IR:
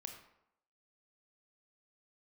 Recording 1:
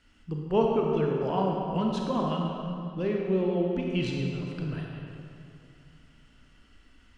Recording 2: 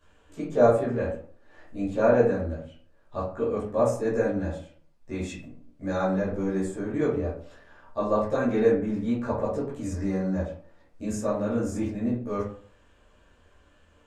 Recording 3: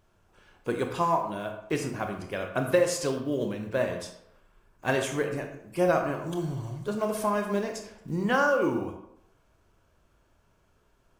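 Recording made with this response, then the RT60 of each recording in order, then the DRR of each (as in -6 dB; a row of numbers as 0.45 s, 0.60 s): 3; 2.7 s, 0.50 s, 0.80 s; -0.5 dB, -11.5 dB, 4.0 dB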